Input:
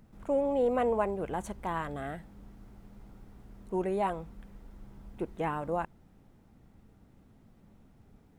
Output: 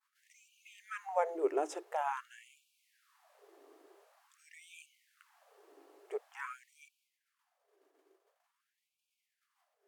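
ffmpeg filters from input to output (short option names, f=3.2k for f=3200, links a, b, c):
-af "equalizer=f=480:t=o:w=0.25:g=9.5,asetrate=37485,aresample=44100,agate=range=-33dB:threshold=-52dB:ratio=3:detection=peak,bandreject=f=50:t=h:w=6,bandreject=f=100:t=h:w=6,bandreject=f=150:t=h:w=6,bandreject=f=200:t=h:w=6,bandreject=f=250:t=h:w=6,bandreject=f=300:t=h:w=6,bandreject=f=350:t=h:w=6,afftfilt=real='re*gte(b*sr/1024,270*pow(2300/270,0.5+0.5*sin(2*PI*0.47*pts/sr)))':imag='im*gte(b*sr/1024,270*pow(2300/270,0.5+0.5*sin(2*PI*0.47*pts/sr)))':win_size=1024:overlap=0.75"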